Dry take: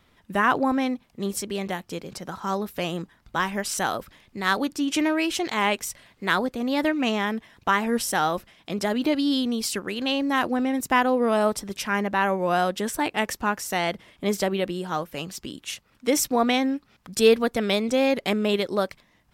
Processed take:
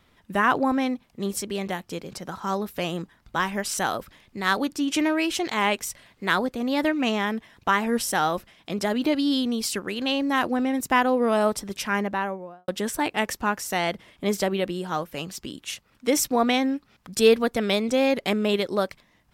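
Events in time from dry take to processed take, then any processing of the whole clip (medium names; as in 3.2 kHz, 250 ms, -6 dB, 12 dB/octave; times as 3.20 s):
11.92–12.68 s: studio fade out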